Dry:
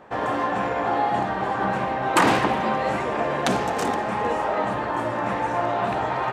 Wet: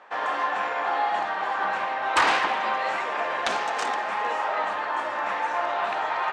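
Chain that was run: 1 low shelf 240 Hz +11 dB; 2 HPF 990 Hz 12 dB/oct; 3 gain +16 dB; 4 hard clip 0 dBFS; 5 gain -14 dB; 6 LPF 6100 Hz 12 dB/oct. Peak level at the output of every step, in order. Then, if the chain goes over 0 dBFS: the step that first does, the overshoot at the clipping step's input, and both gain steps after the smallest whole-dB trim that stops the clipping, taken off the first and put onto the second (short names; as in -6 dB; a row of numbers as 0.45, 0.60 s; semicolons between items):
-4.0, -6.5, +9.5, 0.0, -14.0, -13.0 dBFS; step 3, 9.5 dB; step 3 +6 dB, step 5 -4 dB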